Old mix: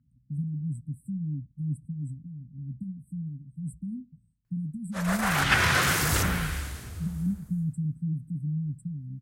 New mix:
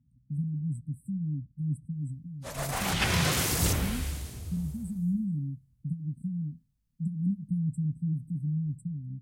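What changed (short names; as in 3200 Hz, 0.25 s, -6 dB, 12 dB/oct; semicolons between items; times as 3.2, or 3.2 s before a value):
background: entry -2.50 s; master: add bell 1500 Hz -11.5 dB 1.1 oct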